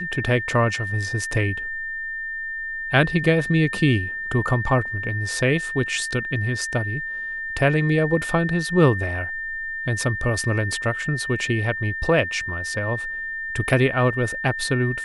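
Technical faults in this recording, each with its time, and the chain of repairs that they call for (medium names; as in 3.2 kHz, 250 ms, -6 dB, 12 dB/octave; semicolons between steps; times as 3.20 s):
whine 1.8 kHz -27 dBFS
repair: band-stop 1.8 kHz, Q 30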